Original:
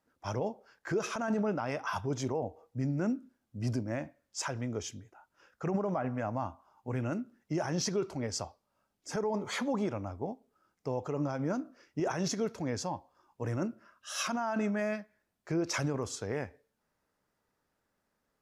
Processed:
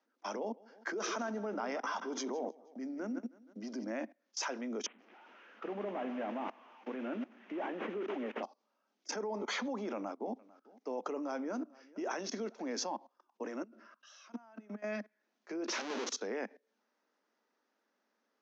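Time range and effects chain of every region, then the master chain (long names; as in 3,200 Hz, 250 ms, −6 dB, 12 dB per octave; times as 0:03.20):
0:00.38–0:03.90: notch filter 2,600 Hz, Q 10 + repeating echo 158 ms, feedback 32%, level −14 dB
0:04.86–0:08.43: linear delta modulator 16 kbit/s, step −43.5 dBFS + feedback echo at a low word length 127 ms, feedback 55%, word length 9 bits, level −14 dB
0:09.94–0:12.76: de-essing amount 95% + single-tap delay 447 ms −22 dB
0:13.62–0:14.84: notch filter 6,900 Hz, Q 17 + downward compressor 16 to 1, threshold −40 dBFS
0:15.68–0:16.13: downward compressor 4 to 1, threshold −37 dBFS + comparator with hysteresis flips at −55.5 dBFS
whole clip: elliptic low-pass filter 6,300 Hz, stop band 40 dB; output level in coarse steps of 22 dB; Butterworth high-pass 210 Hz 72 dB per octave; level +7.5 dB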